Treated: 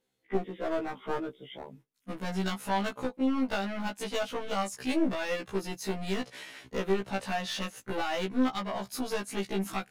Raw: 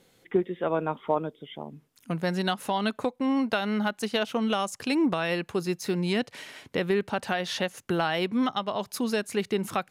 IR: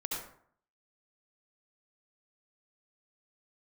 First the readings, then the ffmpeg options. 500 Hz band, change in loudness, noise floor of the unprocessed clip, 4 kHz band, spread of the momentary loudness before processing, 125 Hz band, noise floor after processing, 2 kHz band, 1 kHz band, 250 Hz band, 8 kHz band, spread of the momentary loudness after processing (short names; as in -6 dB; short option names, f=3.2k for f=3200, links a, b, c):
-5.0 dB, -4.5 dB, -64 dBFS, -5.0 dB, 6 LU, -5.5 dB, -71 dBFS, -4.5 dB, -4.0 dB, -4.0 dB, -1.5 dB, 9 LU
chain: -af "aeval=exprs='clip(val(0),-1,0.0355)':c=same,agate=range=-16dB:threshold=-49dB:ratio=16:detection=peak,afftfilt=real='re*1.73*eq(mod(b,3),0)':imag='im*1.73*eq(mod(b,3),0)':win_size=2048:overlap=0.75"